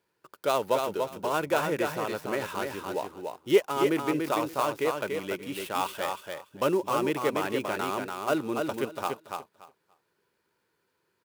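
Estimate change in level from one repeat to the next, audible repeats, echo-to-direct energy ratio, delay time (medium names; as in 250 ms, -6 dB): -15.5 dB, 2, -4.5 dB, 288 ms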